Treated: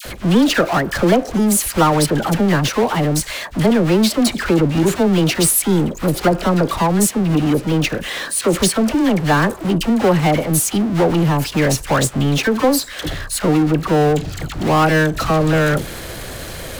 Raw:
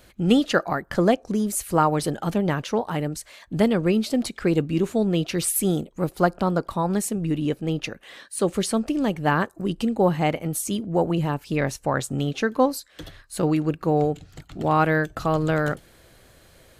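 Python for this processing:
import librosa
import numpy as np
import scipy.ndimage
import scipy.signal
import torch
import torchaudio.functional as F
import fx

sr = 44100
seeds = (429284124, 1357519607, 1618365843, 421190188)

y = fx.power_curve(x, sr, exponent=0.5)
y = fx.dispersion(y, sr, late='lows', ms=54.0, hz=1100.0)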